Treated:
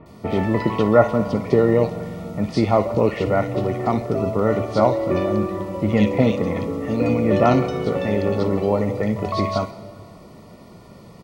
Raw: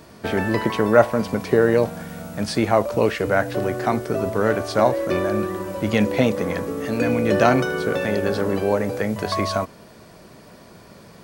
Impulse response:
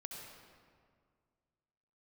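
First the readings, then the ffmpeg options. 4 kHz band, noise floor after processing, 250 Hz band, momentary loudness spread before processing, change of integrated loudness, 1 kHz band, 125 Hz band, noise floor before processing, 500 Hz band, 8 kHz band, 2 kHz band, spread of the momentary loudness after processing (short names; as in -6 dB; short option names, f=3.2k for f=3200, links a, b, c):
-4.0 dB, -44 dBFS, +2.0 dB, 9 LU, +1.0 dB, 0.0 dB, +4.0 dB, -46 dBFS, +0.5 dB, n/a, -5.5 dB, 8 LU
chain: -filter_complex "[0:a]asuperstop=centerf=1600:order=20:qfactor=5.1,bass=f=250:g=4,treble=f=4k:g=-5,acrossover=split=2300[a][b];[b]adelay=60[c];[a][c]amix=inputs=2:normalize=0,asplit=2[d][e];[1:a]atrim=start_sample=2205,adelay=58[f];[e][f]afir=irnorm=-1:irlink=0,volume=-10.5dB[g];[d][g]amix=inputs=2:normalize=0,acrossover=split=6600[h][i];[i]acompressor=threshold=-58dB:ratio=4:attack=1:release=60[j];[h][j]amix=inputs=2:normalize=0"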